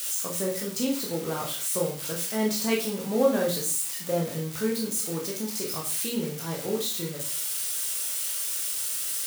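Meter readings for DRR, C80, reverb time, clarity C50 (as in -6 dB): -2.0 dB, 12.0 dB, 0.45 s, 6.5 dB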